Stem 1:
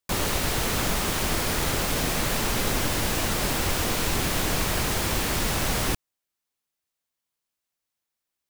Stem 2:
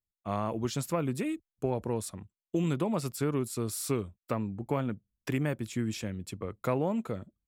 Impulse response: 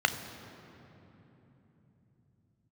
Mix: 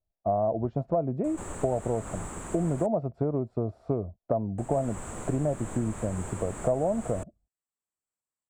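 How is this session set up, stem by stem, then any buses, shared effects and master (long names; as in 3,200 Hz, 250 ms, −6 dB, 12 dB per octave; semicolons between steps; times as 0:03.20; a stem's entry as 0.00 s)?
−8.0 dB, 1.15 s, muted 0:02.73–0:04.58, no send, echo send −3.5 dB, drawn EQ curve 1,200 Hz 0 dB, 5,300 Hz −22 dB, 7,800 Hz +7 dB, 12,000 Hz −23 dB; automatic ducking −11 dB, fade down 1.45 s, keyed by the second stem
+2.5 dB, 0.00 s, no send, no echo send, low-pass with resonance 670 Hz, resonance Q 7.1; low-shelf EQ 120 Hz +9.5 dB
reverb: not used
echo: single-tap delay 134 ms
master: downward compressor 3 to 1, threshold −25 dBFS, peak gain reduction 10 dB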